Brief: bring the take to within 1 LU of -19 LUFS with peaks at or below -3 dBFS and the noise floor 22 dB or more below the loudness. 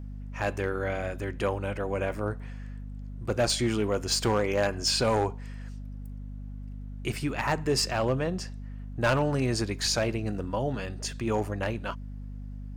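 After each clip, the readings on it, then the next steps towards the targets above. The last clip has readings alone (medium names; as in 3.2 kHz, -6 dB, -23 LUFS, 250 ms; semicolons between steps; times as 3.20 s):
clipped samples 0.4%; clipping level -18.5 dBFS; hum 50 Hz; highest harmonic 250 Hz; hum level -36 dBFS; loudness -29.0 LUFS; peak level -18.5 dBFS; loudness target -19.0 LUFS
-> clip repair -18.5 dBFS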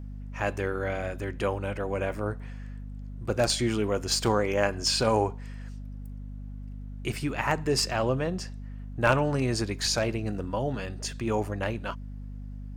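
clipped samples 0.0%; hum 50 Hz; highest harmonic 250 Hz; hum level -36 dBFS
-> de-hum 50 Hz, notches 5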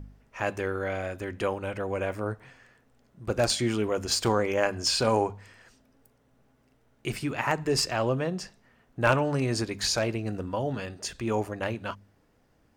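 hum not found; loudness -28.5 LUFS; peak level -9.0 dBFS; loudness target -19.0 LUFS
-> trim +9.5 dB; peak limiter -3 dBFS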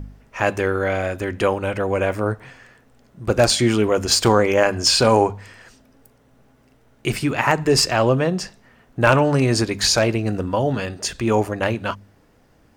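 loudness -19.5 LUFS; peak level -3.0 dBFS; noise floor -56 dBFS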